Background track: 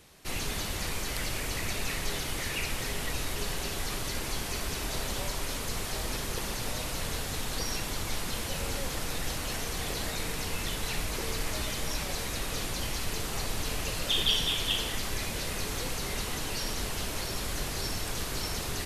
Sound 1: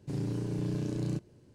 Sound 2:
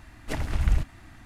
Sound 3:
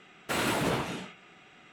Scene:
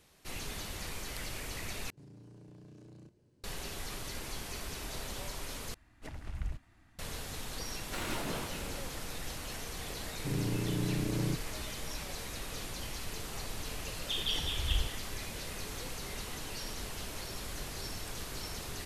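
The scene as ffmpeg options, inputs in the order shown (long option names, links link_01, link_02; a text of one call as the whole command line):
ffmpeg -i bed.wav -i cue0.wav -i cue1.wav -i cue2.wav -filter_complex "[1:a]asplit=2[link_01][link_02];[2:a]asplit=2[link_03][link_04];[0:a]volume=-7.5dB[link_05];[link_01]acompressor=threshold=-43dB:ratio=6:attack=1.5:release=24:knee=1:detection=peak[link_06];[3:a]aecho=1:1:425:0.266[link_07];[link_04]aecho=1:1:2.4:0.65[link_08];[link_05]asplit=3[link_09][link_10][link_11];[link_09]atrim=end=1.904[link_12];[link_06]atrim=end=1.54,asetpts=PTS-STARTPTS,volume=-9.5dB[link_13];[link_10]atrim=start=3.436:end=5.744[link_14];[link_03]atrim=end=1.25,asetpts=PTS-STARTPTS,volume=-15dB[link_15];[link_11]atrim=start=6.986[link_16];[link_07]atrim=end=1.72,asetpts=PTS-STARTPTS,volume=-10dB,afade=type=in:duration=0.004:curve=hsin,afade=type=out:start_time=1.716:duration=0.004:curve=hsin,adelay=7630[link_17];[link_02]atrim=end=1.54,asetpts=PTS-STARTPTS,volume=-0.5dB,afade=type=in:duration=0.004:curve=hsin,afade=type=out:start_time=1.536:duration=0.004:curve=hsin,adelay=10170[link_18];[link_08]atrim=end=1.25,asetpts=PTS-STARTPTS,volume=-13.5dB,afade=type=in:duration=0.004:curve=hsin,afade=type=out:start_time=1.246:duration=0.004:curve=hsin,adelay=14040[link_19];[link_12][link_13]acrossfade=duration=0.004:curve1=hsin:curve2=hsin[link_20];[link_20][link_14]acrossfade=duration=0.004:curve1=hsin:curve2=hsin[link_21];[link_21][link_15]acrossfade=duration=0.004:curve1=hsin:curve2=hsin[link_22];[link_22][link_16]acrossfade=duration=0.004:curve1=hsin:curve2=hsin[link_23];[link_23][link_17][link_18][link_19]amix=inputs=4:normalize=0" out.wav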